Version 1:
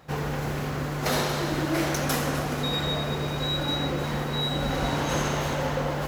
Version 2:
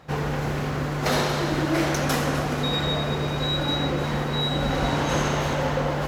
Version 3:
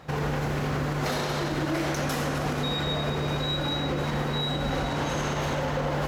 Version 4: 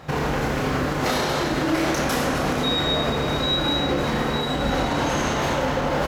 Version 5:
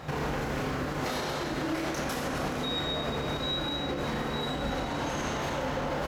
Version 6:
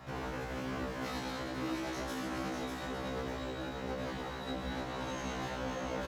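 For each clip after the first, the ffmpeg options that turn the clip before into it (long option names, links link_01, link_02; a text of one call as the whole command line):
ffmpeg -i in.wav -af "highshelf=frequency=9900:gain=-10,volume=3dB" out.wav
ffmpeg -i in.wav -af "alimiter=limit=-21dB:level=0:latency=1:release=101,volume=2dB" out.wav
ffmpeg -i in.wav -filter_complex "[0:a]asplit=2[link_01][link_02];[link_02]adelay=31,volume=-5dB[link_03];[link_01][link_03]amix=inputs=2:normalize=0,volume=5dB" out.wav
ffmpeg -i in.wav -af "alimiter=limit=-22.5dB:level=0:latency=1:release=402" out.wav
ffmpeg -i in.wav -filter_complex "[0:a]asplit=2[link_01][link_02];[link_02]aecho=0:1:596:0.562[link_03];[link_01][link_03]amix=inputs=2:normalize=0,afftfilt=real='re*1.73*eq(mod(b,3),0)':imag='im*1.73*eq(mod(b,3),0)':win_size=2048:overlap=0.75,volume=-6.5dB" out.wav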